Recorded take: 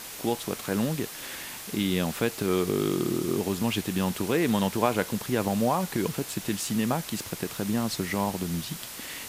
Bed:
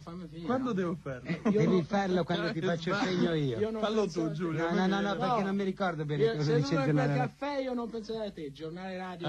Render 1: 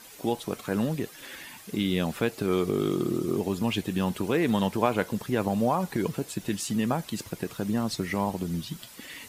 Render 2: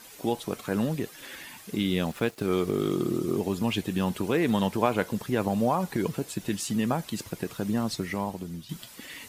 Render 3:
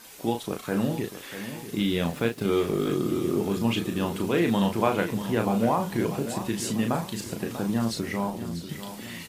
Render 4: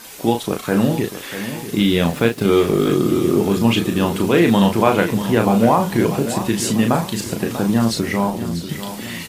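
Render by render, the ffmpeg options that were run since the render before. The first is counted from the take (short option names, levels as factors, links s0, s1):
-af "afftdn=nr=11:nf=-40"
-filter_complex "[0:a]asettb=1/sr,asplit=3[s0][s1][s2];[s0]atrim=end=1.984[s3];[s1]atrim=start=1.98:end=2.91,asetpts=PTS-STARTPTS,afade=t=in:d=0.004:c=qsin,afade=t=out:st=0.926:d=0.004:c=qsin,aeval=exprs='sgn(val(0))*max(abs(val(0))-0.00447,0)':c=same[s4];[s2]atrim=start=2.906[s5];[s3][s4]acrossfade=d=0.004:c1=hsin:c2=qsin[s6];[s6][s5]acrossfade=d=0.004:c1=qsin:c2=hsin,asplit=2[s7][s8];[s7]atrim=end=8.69,asetpts=PTS-STARTPTS,afade=t=out:st=7.85:d=0.84:silence=0.334965[s9];[s8]atrim=start=8.69,asetpts=PTS-STARTPTS,afade=t=in:d=0.004:c=hsin:silence=0.334965[s10];[s9][s10]concat=n=2:v=0:a=1"
-filter_complex "[0:a]asplit=2[s0][s1];[s1]adelay=35,volume=0.562[s2];[s0][s2]amix=inputs=2:normalize=0,aecho=1:1:642|1284|1926|2568|3210:0.266|0.133|0.0665|0.0333|0.0166"
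-af "volume=2.99,alimiter=limit=0.891:level=0:latency=1"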